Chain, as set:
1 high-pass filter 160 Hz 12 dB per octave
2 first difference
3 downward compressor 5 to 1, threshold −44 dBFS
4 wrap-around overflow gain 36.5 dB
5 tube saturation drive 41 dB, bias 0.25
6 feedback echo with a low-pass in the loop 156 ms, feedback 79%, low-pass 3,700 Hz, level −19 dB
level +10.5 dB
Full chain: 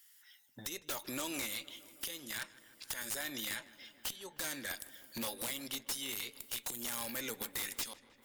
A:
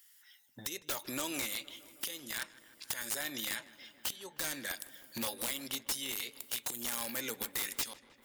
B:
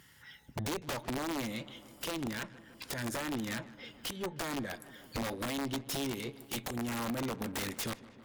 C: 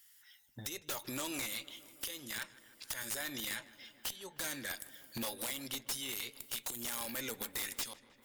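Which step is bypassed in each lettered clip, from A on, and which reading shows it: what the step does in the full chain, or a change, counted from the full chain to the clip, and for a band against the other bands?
5, change in momentary loudness spread −1 LU
2, 8 kHz band −11.5 dB
1, 125 Hz band +2.5 dB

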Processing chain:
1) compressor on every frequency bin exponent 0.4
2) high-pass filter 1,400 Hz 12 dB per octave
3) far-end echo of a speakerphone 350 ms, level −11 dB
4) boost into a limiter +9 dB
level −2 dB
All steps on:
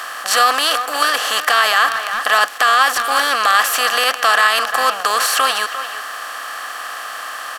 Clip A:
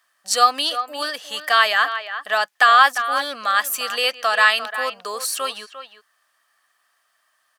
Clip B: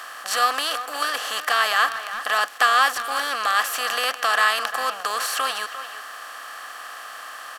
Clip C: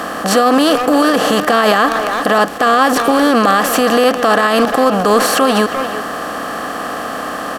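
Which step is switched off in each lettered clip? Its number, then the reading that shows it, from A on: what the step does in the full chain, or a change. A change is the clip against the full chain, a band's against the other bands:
1, 8 kHz band −3.0 dB
4, change in crest factor +6.5 dB
2, 250 Hz band +26.5 dB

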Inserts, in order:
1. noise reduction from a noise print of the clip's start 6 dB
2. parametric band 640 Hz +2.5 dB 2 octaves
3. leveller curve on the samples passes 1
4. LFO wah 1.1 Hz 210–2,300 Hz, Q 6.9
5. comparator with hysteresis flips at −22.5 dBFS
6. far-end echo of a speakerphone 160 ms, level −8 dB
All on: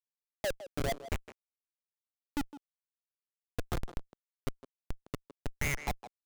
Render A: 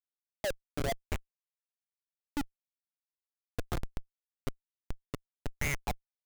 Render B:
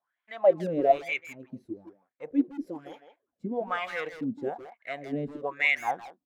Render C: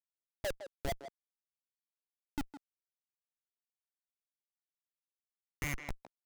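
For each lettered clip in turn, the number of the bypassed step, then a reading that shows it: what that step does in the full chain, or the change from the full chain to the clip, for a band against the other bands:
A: 6, echo-to-direct ratio −14.0 dB to none audible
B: 5, change in crest factor +5.0 dB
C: 3, change in crest factor +2.5 dB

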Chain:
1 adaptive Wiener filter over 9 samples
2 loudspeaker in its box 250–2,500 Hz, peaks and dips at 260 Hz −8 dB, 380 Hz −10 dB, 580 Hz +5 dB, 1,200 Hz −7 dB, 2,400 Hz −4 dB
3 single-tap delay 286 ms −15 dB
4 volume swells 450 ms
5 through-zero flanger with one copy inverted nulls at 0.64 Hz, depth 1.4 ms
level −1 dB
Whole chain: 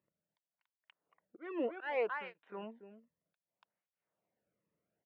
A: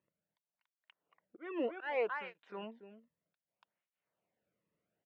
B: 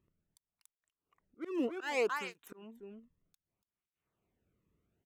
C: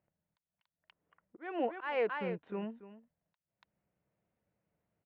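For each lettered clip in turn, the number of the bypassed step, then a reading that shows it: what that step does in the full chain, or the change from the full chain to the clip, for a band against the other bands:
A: 1, 4 kHz band +2.0 dB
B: 2, change in momentary loudness spread +3 LU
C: 5, 2 kHz band −2.5 dB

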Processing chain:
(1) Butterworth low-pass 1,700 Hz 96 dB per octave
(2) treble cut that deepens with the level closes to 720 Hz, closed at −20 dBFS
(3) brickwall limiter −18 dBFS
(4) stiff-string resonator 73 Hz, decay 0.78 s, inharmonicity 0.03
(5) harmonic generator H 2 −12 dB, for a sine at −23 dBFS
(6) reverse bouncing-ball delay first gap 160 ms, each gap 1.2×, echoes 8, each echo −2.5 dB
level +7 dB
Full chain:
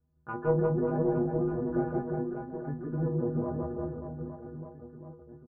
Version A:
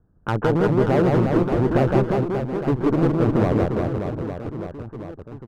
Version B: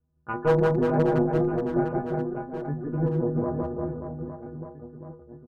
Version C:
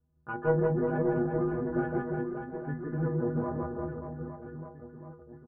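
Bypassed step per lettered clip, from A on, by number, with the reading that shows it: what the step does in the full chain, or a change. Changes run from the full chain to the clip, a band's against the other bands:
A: 4, 2 kHz band +3.5 dB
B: 3, average gain reduction 3.0 dB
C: 2, 2 kHz band +6.5 dB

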